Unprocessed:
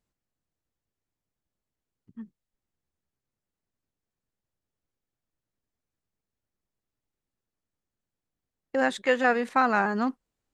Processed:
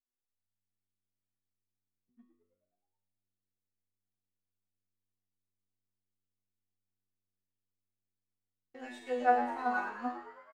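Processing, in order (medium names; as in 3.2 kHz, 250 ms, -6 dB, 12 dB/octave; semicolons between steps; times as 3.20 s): chord resonator B3 fifth, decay 0.66 s; in parallel at -4 dB: crossover distortion -58 dBFS; on the sum: dynamic bell 700 Hz, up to +7 dB, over -47 dBFS, Q 0.91; frequency-shifting echo 107 ms, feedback 61%, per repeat +95 Hz, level -12 dB; trim +1 dB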